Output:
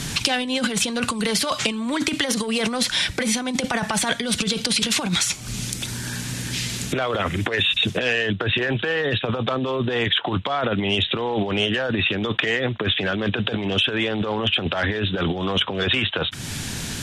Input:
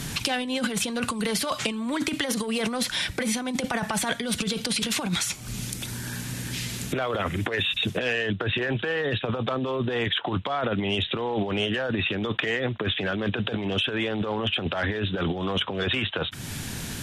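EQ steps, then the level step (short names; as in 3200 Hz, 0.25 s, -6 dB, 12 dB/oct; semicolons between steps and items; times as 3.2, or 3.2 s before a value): air absorption 54 m; high shelf 4100 Hz +9.5 dB; +3.5 dB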